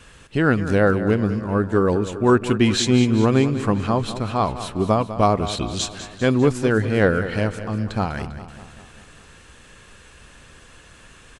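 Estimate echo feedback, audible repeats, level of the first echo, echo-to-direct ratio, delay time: 58%, 5, -12.5 dB, -10.5 dB, 0.199 s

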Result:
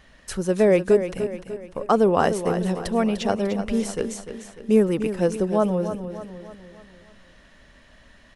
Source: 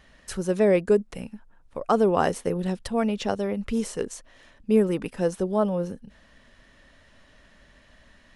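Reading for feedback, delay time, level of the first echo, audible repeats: 48%, 0.298 s, -10.0 dB, 4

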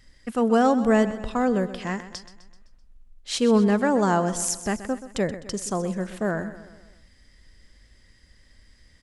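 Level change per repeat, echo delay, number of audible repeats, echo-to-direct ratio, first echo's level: -5.5 dB, 0.128 s, 4, -12.5 dB, -14.0 dB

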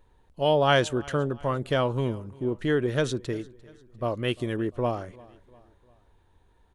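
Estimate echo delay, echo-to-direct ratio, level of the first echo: 0.348 s, -22.0 dB, -23.0 dB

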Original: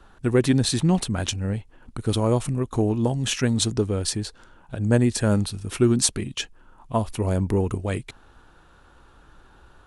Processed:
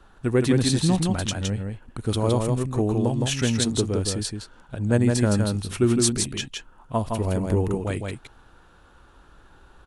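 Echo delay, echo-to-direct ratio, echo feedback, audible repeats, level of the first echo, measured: 0.164 s, -4.0 dB, no steady repeat, 1, -4.0 dB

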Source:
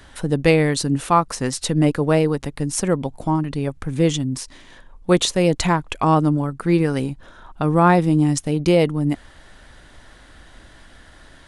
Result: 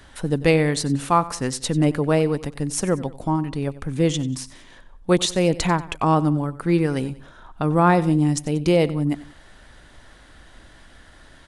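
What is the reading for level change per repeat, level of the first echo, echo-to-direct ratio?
-7.0 dB, -18.0 dB, -17.0 dB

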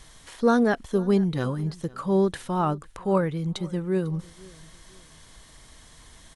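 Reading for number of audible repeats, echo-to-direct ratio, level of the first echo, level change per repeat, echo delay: 2, -22.5 dB, -23.0 dB, -9.5 dB, 0.498 s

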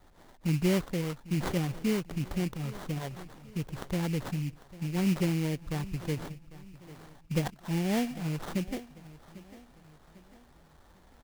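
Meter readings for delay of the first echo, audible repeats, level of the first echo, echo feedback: 0.798 s, 3, -18.0 dB, 43%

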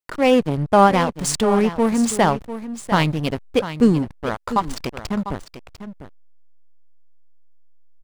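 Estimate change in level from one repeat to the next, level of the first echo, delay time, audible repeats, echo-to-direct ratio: no steady repeat, -12.0 dB, 0.698 s, 1, -12.0 dB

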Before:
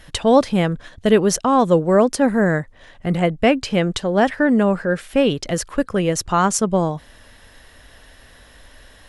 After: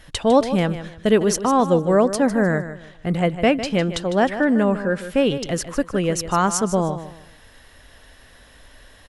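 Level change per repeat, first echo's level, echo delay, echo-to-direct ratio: -11.0 dB, -12.0 dB, 0.153 s, -11.5 dB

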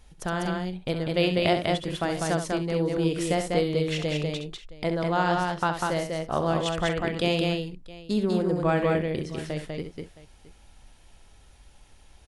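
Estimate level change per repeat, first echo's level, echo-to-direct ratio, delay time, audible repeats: no steady repeat, -8.5 dB, -1.5 dB, 66 ms, 4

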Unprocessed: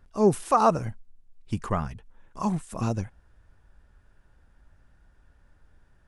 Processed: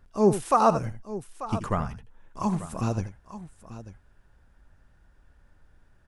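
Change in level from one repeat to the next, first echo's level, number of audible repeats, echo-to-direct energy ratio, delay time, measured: no steady repeat, -12.5 dB, 2, -10.5 dB, 81 ms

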